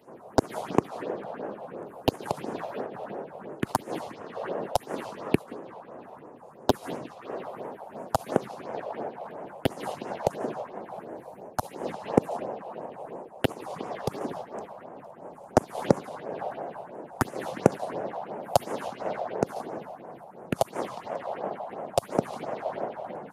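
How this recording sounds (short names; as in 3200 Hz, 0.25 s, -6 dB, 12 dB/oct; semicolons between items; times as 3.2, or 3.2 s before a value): phasing stages 4, 2.9 Hz, lowest notch 270–4100 Hz; noise-modulated level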